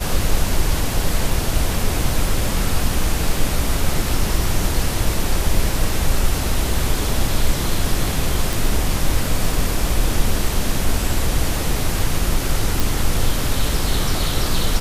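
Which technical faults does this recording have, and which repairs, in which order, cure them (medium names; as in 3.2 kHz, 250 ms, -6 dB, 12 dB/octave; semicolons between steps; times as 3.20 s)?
8.53 s: pop
12.80 s: pop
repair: de-click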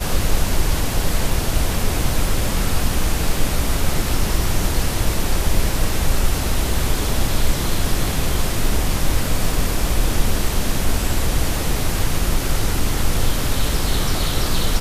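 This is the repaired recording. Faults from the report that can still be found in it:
nothing left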